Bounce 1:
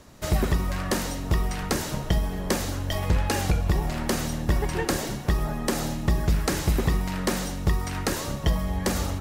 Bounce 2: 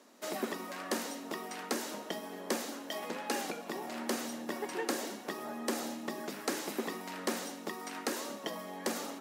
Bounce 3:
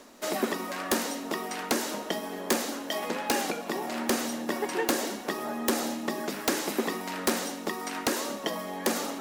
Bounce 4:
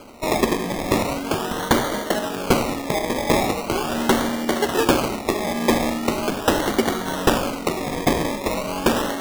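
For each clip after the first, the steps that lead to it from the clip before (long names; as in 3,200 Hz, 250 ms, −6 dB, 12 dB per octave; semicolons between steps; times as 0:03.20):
elliptic high-pass filter 230 Hz, stop band 60 dB; level −7 dB
reversed playback; upward compression, threshold −44 dBFS; reversed playback; background noise pink −77 dBFS; wrap-around overflow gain 21.5 dB; level +7.5 dB
sample-and-hold swept by an LFO 24×, swing 60% 0.4 Hz; convolution reverb RT60 0.25 s, pre-delay 30 ms, DRR 13.5 dB; level +9 dB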